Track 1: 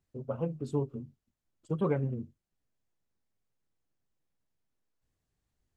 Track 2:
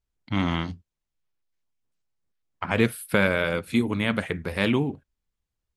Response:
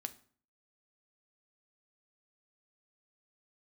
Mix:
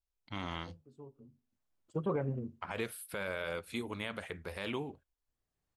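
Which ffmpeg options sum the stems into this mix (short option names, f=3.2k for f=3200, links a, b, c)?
-filter_complex "[0:a]equalizer=f=870:w=0.42:g=6,adelay=250,volume=-6.5dB,afade=t=in:st=1.22:d=0.44:silence=0.298538,asplit=2[a][b];[b]volume=-13dB[c];[1:a]equalizer=f=125:t=o:w=1:g=-9,equalizer=f=250:t=o:w=1:g=-8,equalizer=f=2k:t=o:w=1:g=-3,volume=-8dB,asplit=2[d][e];[e]apad=whole_len=265441[f];[a][f]sidechaincompress=threshold=-49dB:ratio=10:attack=16:release=708[g];[2:a]atrim=start_sample=2205[h];[c][h]afir=irnorm=-1:irlink=0[i];[g][d][i]amix=inputs=3:normalize=0,alimiter=limit=-24dB:level=0:latency=1:release=48"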